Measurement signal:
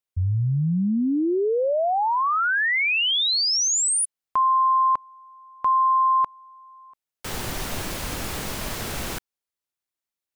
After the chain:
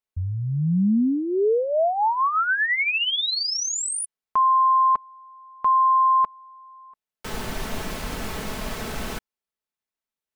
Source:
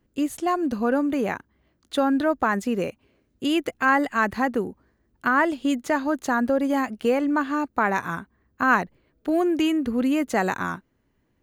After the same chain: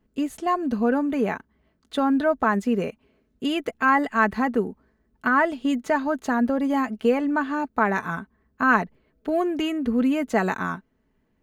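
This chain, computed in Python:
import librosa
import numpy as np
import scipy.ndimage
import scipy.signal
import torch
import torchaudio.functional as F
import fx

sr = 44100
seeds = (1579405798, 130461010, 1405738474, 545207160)

y = fx.high_shelf(x, sr, hz=3900.0, db=-7.5)
y = y + 0.44 * np.pad(y, (int(4.6 * sr / 1000.0), 0))[:len(y)]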